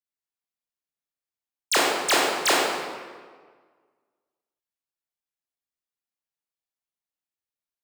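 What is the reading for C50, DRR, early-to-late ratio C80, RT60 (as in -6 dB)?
-1.0 dB, -5.5 dB, 1.0 dB, 1.6 s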